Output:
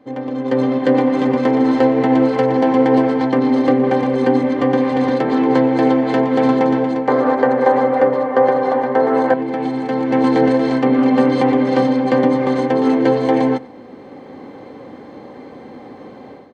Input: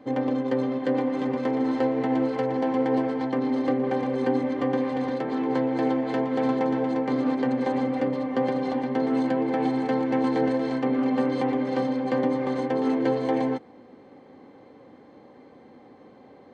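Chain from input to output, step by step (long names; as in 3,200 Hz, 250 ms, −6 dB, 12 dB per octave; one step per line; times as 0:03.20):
0:07.08–0:09.34: flat-topped bell 870 Hz +11.5 dB 2.5 octaves
automatic gain control gain up to 15 dB
single-tap delay 93 ms −21 dB
level −1 dB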